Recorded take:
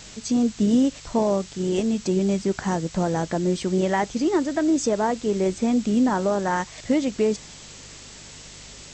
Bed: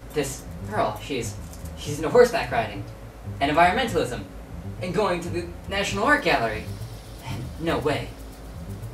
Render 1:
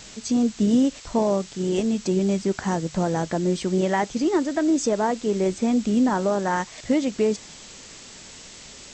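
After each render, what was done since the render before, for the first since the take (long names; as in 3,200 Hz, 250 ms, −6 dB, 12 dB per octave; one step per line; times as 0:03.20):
hum removal 50 Hz, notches 3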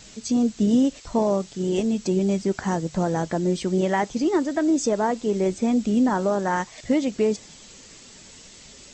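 broadband denoise 6 dB, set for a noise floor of −44 dBFS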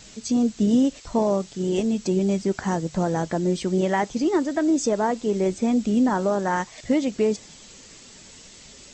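no processing that can be heard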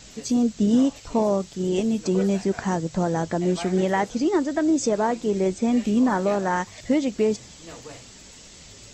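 mix in bed −18 dB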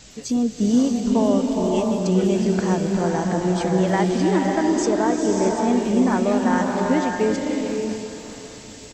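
repeating echo 401 ms, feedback 57%, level −14.5 dB
slow-attack reverb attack 600 ms, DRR 0.5 dB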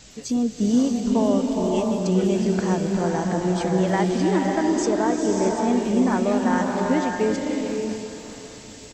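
level −1.5 dB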